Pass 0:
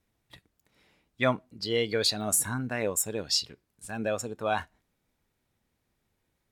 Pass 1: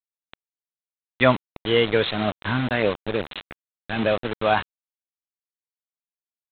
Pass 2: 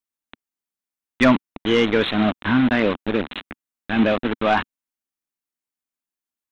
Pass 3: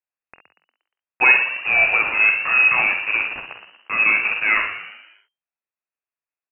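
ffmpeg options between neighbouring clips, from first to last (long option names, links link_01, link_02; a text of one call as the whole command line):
ffmpeg -i in.wav -af "highpass=frequency=52:width=0.5412,highpass=frequency=52:width=1.3066,aresample=8000,acrusher=bits=5:mix=0:aa=0.000001,aresample=44100,volume=8dB" out.wav
ffmpeg -i in.wav -af "asoftclip=type=tanh:threshold=-12dB,equalizer=frequency=125:width_type=o:width=1:gain=-7,equalizer=frequency=250:width_type=o:width=1:gain=8,equalizer=frequency=500:width_type=o:width=1:gain=-5,equalizer=frequency=4000:width_type=o:width=1:gain=-4,volume=5dB" out.wav
ffmpeg -i in.wav -filter_complex "[0:a]asplit=2[link_01][link_02];[link_02]aecho=0:1:24|47|66:0.141|0.398|0.355[link_03];[link_01][link_03]amix=inputs=2:normalize=0,lowpass=frequency=2400:width_type=q:width=0.5098,lowpass=frequency=2400:width_type=q:width=0.6013,lowpass=frequency=2400:width_type=q:width=0.9,lowpass=frequency=2400:width_type=q:width=2.563,afreqshift=-2800,asplit=2[link_04][link_05];[link_05]asplit=5[link_06][link_07][link_08][link_09][link_10];[link_06]adelay=118,afreqshift=73,volume=-10dB[link_11];[link_07]adelay=236,afreqshift=146,volume=-16.6dB[link_12];[link_08]adelay=354,afreqshift=219,volume=-23.1dB[link_13];[link_09]adelay=472,afreqshift=292,volume=-29.7dB[link_14];[link_10]adelay=590,afreqshift=365,volume=-36.2dB[link_15];[link_11][link_12][link_13][link_14][link_15]amix=inputs=5:normalize=0[link_16];[link_04][link_16]amix=inputs=2:normalize=0,volume=-1dB" out.wav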